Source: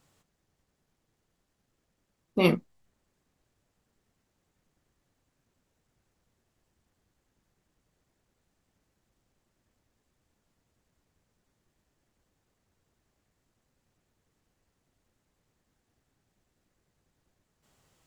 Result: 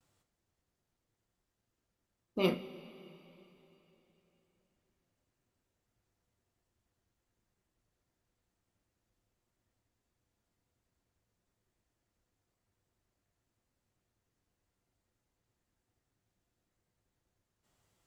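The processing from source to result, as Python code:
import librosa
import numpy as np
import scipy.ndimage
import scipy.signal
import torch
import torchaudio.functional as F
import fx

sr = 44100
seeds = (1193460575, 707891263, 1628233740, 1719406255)

y = fx.vibrato(x, sr, rate_hz=0.96, depth_cents=68.0)
y = fx.rev_double_slope(y, sr, seeds[0], early_s=0.26, late_s=3.6, knee_db=-18, drr_db=6.0)
y = y * librosa.db_to_amplitude(-8.5)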